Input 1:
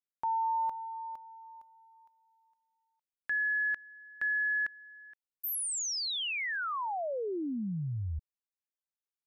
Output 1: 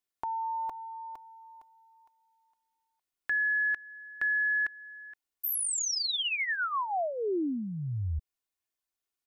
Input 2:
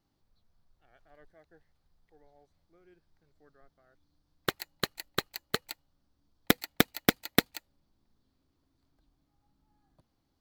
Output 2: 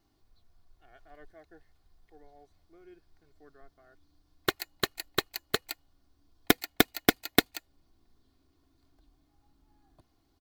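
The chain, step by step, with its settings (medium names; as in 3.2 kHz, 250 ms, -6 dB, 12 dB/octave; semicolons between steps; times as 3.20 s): comb 2.8 ms, depth 49%; in parallel at -3 dB: compression, threshold -39 dBFS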